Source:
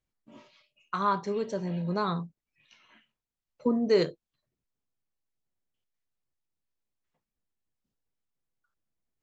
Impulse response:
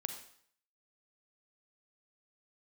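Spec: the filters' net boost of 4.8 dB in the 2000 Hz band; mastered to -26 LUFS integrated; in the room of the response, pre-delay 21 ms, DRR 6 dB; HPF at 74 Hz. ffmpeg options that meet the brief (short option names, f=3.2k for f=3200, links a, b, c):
-filter_complex "[0:a]highpass=74,equalizer=f=2k:t=o:g=6.5,asplit=2[a][b];[1:a]atrim=start_sample=2205,adelay=21[c];[b][c]afir=irnorm=-1:irlink=0,volume=-5.5dB[d];[a][d]amix=inputs=2:normalize=0,volume=1.5dB"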